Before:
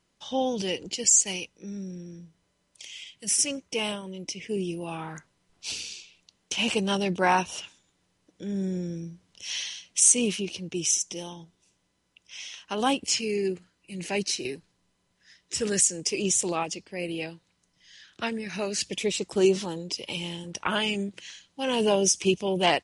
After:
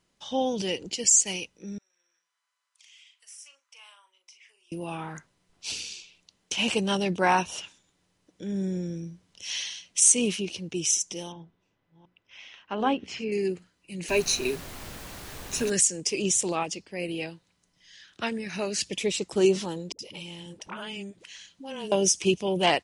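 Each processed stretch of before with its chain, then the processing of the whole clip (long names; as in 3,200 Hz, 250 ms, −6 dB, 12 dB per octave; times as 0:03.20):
0:01.78–0:04.72: downward compressor 2 to 1, threshold −47 dBFS + four-pole ladder high-pass 970 Hz, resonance 45% + double-tracking delay 40 ms −8.5 dB
0:11.32–0:13.32: delay that plays each chunk backwards 368 ms, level −12.5 dB + low-pass filter 2,200 Hz + mains-hum notches 60/120/180/240/300/360/420 Hz
0:14.08–0:15.69: EQ curve with evenly spaced ripples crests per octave 1.5, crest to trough 13 dB + background noise pink −41 dBFS
0:19.92–0:21.92: downward compressor 2 to 1, threshold −42 dBFS + all-pass dispersion highs, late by 69 ms, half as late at 390 Hz
whole clip: no processing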